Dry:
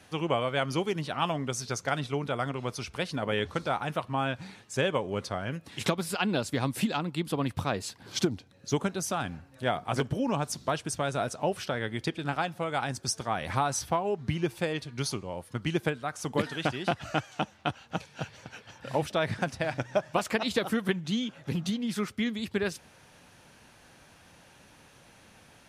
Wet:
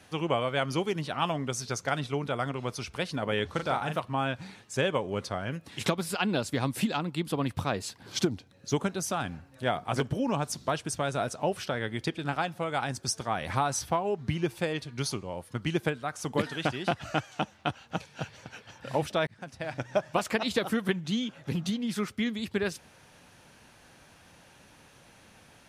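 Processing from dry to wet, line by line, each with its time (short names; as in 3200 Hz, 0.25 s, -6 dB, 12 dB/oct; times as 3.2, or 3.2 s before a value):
3.51–4 doubler 38 ms -5.5 dB
19.27–19.96 fade in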